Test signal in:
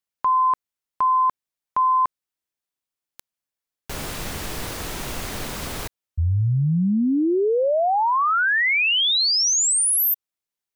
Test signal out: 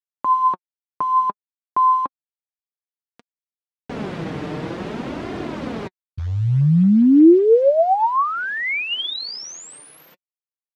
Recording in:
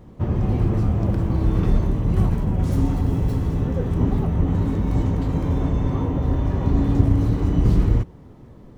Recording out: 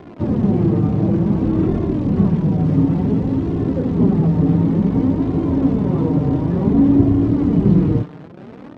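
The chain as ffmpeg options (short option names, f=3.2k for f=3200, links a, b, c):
-af "lowshelf=f=340:g=9,acrusher=bits=7:dc=4:mix=0:aa=0.000001,flanger=delay=2.8:depth=3.9:regen=35:speed=0.56:shape=sinusoidal,highpass=200,lowpass=3.1k,tiltshelf=f=790:g=4.5,volume=5dB"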